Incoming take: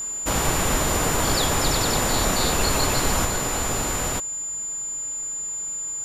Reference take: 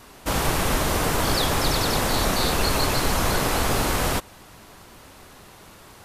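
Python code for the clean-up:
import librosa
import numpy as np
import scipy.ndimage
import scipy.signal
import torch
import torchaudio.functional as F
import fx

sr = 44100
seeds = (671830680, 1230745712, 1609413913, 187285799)

y = fx.notch(x, sr, hz=7100.0, q=30.0)
y = fx.fix_level(y, sr, at_s=3.25, step_db=4.0)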